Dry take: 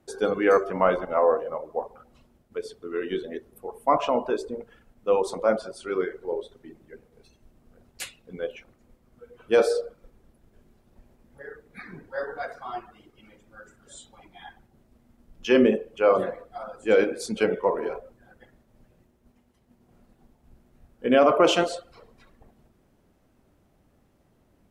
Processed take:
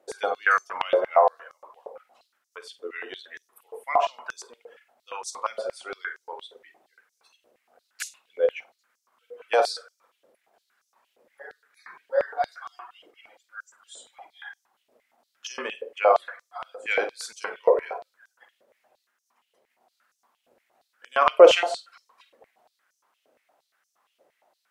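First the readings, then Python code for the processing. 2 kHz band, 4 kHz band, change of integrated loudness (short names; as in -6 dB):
+3.5 dB, +2.0 dB, +0.5 dB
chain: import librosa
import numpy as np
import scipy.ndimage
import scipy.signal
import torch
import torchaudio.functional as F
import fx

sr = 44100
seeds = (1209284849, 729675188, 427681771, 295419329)

y = fx.room_flutter(x, sr, wall_m=8.5, rt60_s=0.22)
y = fx.filter_held_highpass(y, sr, hz=8.6, low_hz=520.0, high_hz=5900.0)
y = y * librosa.db_to_amplitude(-1.5)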